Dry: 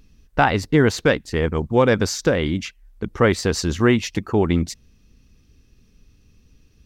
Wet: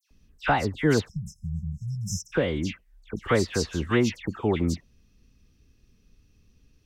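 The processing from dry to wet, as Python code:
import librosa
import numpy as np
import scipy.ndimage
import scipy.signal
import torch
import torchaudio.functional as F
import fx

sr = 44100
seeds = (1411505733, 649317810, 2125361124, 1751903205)

y = fx.dispersion(x, sr, late='lows', ms=109.0, hz=2300.0)
y = fx.spec_erase(y, sr, start_s=1.09, length_s=1.24, low_hz=210.0, high_hz=5100.0)
y = y * librosa.db_to_amplitude(-6.0)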